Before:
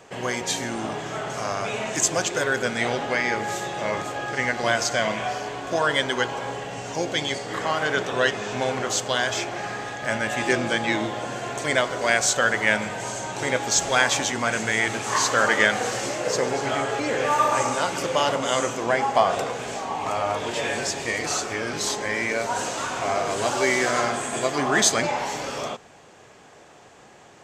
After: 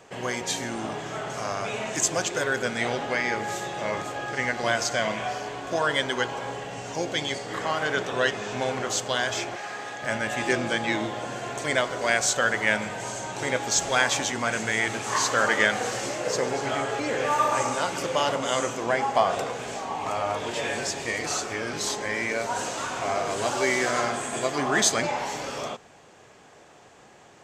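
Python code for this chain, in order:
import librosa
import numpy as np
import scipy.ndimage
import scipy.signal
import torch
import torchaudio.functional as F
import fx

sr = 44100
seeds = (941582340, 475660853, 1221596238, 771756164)

y = fx.highpass(x, sr, hz=fx.line((9.55, 890.0), (10.02, 210.0)), slope=6, at=(9.55, 10.02), fade=0.02)
y = y * 10.0 ** (-2.5 / 20.0)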